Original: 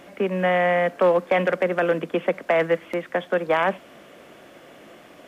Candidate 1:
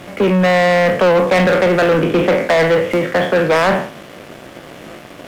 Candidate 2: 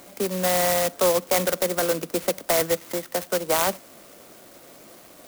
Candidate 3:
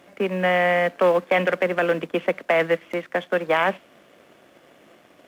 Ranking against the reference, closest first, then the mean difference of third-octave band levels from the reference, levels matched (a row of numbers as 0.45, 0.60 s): 3, 1, 2; 3.0, 6.5, 8.5 dB